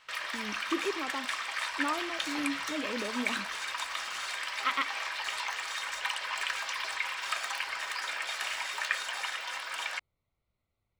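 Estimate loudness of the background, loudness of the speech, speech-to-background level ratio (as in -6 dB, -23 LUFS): -33.5 LUFS, -36.5 LUFS, -3.0 dB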